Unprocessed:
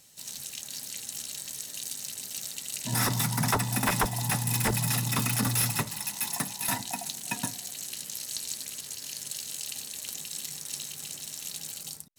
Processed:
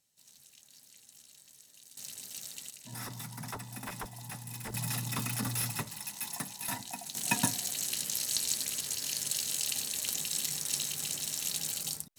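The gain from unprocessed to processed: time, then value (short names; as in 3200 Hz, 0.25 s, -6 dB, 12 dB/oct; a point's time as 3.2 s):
-19 dB
from 1.97 s -6.5 dB
from 2.7 s -15 dB
from 4.74 s -7 dB
from 7.15 s +3.5 dB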